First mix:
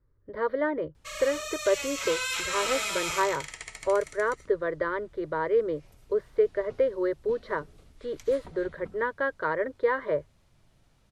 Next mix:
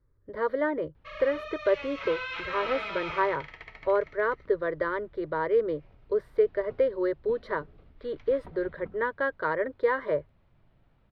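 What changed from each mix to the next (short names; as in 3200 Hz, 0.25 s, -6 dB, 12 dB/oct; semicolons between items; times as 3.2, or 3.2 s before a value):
background: add Gaussian blur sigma 2.9 samples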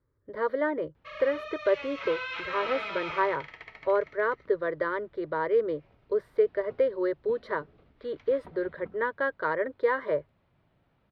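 master: add HPF 140 Hz 6 dB/oct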